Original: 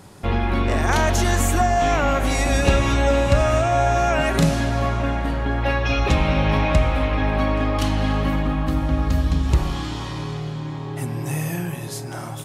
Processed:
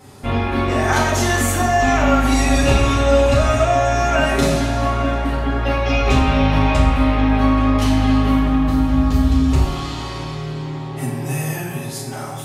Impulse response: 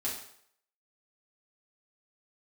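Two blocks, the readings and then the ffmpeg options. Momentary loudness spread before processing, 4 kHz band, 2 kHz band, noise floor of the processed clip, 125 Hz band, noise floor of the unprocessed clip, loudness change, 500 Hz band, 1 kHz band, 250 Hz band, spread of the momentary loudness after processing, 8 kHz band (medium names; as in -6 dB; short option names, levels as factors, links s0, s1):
10 LU, +3.0 dB, +3.0 dB, -29 dBFS, +2.0 dB, -31 dBFS, +3.5 dB, +3.0 dB, +3.0 dB, +6.0 dB, 11 LU, +3.5 dB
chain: -filter_complex "[1:a]atrim=start_sample=2205[s0];[0:a][s0]afir=irnorm=-1:irlink=0"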